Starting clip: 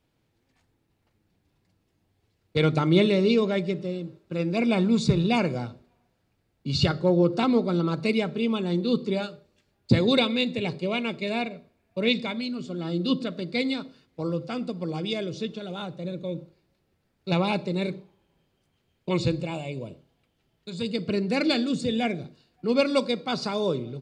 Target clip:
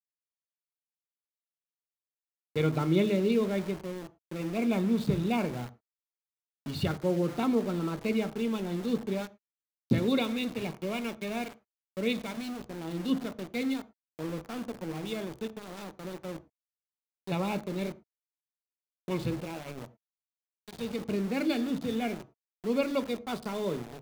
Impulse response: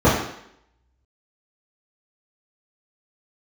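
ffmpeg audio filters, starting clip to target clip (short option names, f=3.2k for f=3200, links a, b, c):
-filter_complex "[0:a]lowpass=3.2k,aeval=exprs='val(0)*gte(abs(val(0)),0.0251)':c=same,asplit=2[a][b];[1:a]atrim=start_sample=2205,afade=t=out:st=0.16:d=0.01,atrim=end_sample=7497[c];[b][c]afir=irnorm=-1:irlink=0,volume=-37dB[d];[a][d]amix=inputs=2:normalize=0,volume=-7dB"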